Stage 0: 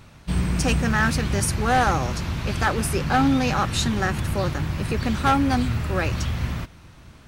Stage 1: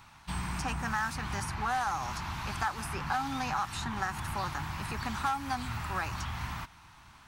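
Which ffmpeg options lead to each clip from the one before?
-filter_complex "[0:a]lowshelf=f=680:t=q:w=3:g=-8.5,acrossover=split=1900|4500[a][b][c];[a]acompressor=threshold=-26dB:ratio=4[d];[b]acompressor=threshold=-44dB:ratio=4[e];[c]acompressor=threshold=-42dB:ratio=4[f];[d][e][f]amix=inputs=3:normalize=0,volume=-4dB"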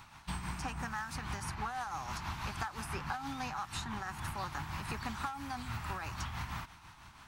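-af "acompressor=threshold=-36dB:ratio=6,tremolo=f=6.1:d=0.45,volume=2dB"

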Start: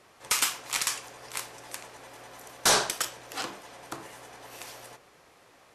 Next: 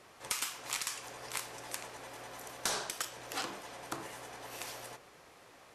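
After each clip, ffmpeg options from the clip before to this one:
-af "acompressor=threshold=-33dB:ratio=8"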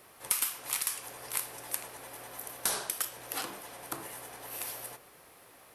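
-af "aexciter=amount=2.9:drive=8.8:freq=9.4k"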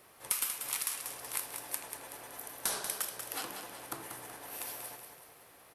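-af "aecho=1:1:188|376|564|752|940:0.422|0.198|0.0932|0.0438|0.0206,volume=-3dB"

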